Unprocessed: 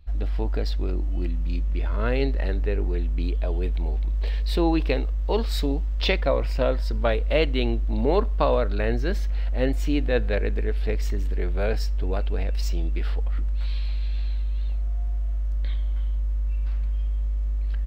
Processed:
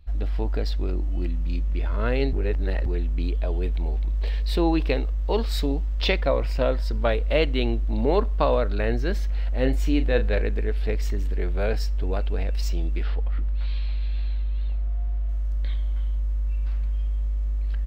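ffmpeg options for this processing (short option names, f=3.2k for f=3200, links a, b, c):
-filter_complex "[0:a]asettb=1/sr,asplit=3[a][b][c];[a]atrim=end=9.604[d];[b]atrim=start=9.6:end=10.42,asetpts=PTS-STARTPTS,afade=t=in:d=0.004:c=qsin,afade=t=out:st=0.816:d=0.004:c=qsin,asplit=2[e][f];[f]adelay=38,volume=-11dB[g];[e][g]amix=inputs=2:normalize=0,atrim=end_sample=36162[h];[c]atrim=start=10.416[i];[d][h]acrossfade=d=0.004:c1=hsin:c2=qsin[j];[j][i]acrossfade=d=0.004:c1=qsin:c2=hsin,asettb=1/sr,asplit=3[k][l][m];[k]atrim=end=13.034[n];[l]atrim=start=13.03:end=15.29,asetpts=PTS-STARTPTS,afade=t=in:d=0.004:c=qsin,afade=t=out:st=2.256:d=0.004:c=qsin,lowpass=4.5k[o];[m]atrim=start=15.286[p];[n][o]acrossfade=d=0.004:c1=hsin:c2=qsin[q];[q][p]acrossfade=d=0.004:c1=qsin:c2=hsin,asplit=3[r][s][t];[r]atrim=end=2.332[u];[s]atrim=start=2.328:end=2.862,asetpts=PTS-STARTPTS,areverse[v];[t]atrim=start=2.858[w];[u][v]acrossfade=d=0.004:c1=hsin:c2=hsin[x];[x][w]acrossfade=d=0.004:c1=hsin:c2=hsin"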